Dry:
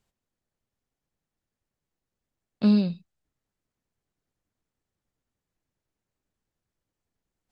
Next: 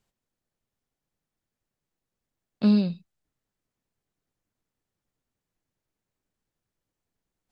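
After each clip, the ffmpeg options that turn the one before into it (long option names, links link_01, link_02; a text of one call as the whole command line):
ffmpeg -i in.wav -af "equalizer=frequency=66:width_type=o:width=0.41:gain=-7" out.wav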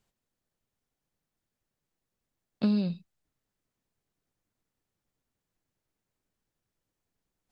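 ffmpeg -i in.wav -af "acompressor=threshold=-23dB:ratio=6" out.wav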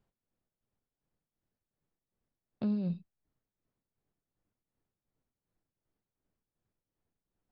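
ffmpeg -i in.wav -af "tremolo=f=2.7:d=0.62,lowpass=frequency=1000:poles=1,alimiter=level_in=3dB:limit=-24dB:level=0:latency=1,volume=-3dB,volume=1.5dB" out.wav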